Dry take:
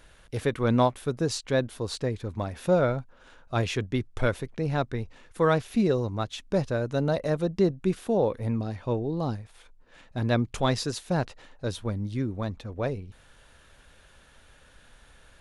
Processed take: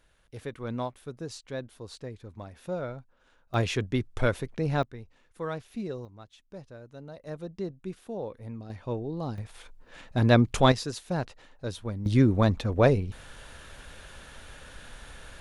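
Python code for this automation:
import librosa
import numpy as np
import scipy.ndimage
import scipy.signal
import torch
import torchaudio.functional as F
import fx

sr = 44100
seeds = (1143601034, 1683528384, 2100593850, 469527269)

y = fx.gain(x, sr, db=fx.steps((0.0, -11.0), (3.54, 0.0), (4.83, -11.5), (6.05, -18.5), (7.27, -11.5), (8.7, -4.5), (9.38, 5.0), (10.72, -3.5), (12.06, 9.0)))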